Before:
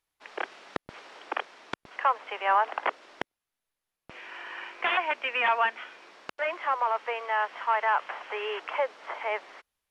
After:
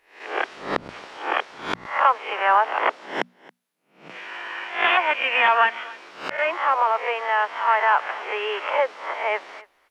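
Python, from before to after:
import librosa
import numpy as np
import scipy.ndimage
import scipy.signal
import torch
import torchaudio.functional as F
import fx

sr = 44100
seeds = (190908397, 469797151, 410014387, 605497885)

p1 = fx.spec_swells(x, sr, rise_s=0.45)
p2 = fx.cheby1_highpass(p1, sr, hz=160.0, order=4, at=(2.33, 4.16))
p3 = fx.hum_notches(p2, sr, base_hz=60, count=4)
p4 = p3 + fx.echo_single(p3, sr, ms=276, db=-22.0, dry=0)
y = p4 * librosa.db_to_amplitude(5.5)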